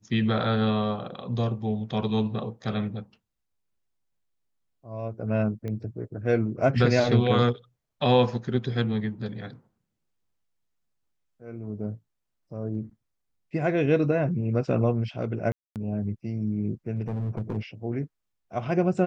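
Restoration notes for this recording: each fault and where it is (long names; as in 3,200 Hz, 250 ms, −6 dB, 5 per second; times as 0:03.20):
0:05.68: click −23 dBFS
0:15.52–0:15.76: drop-out 238 ms
0:17.01–0:17.58: clipping −25.5 dBFS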